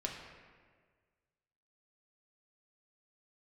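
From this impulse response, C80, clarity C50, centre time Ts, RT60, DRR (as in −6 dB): 5.0 dB, 4.0 dB, 57 ms, 1.6 s, −0.5 dB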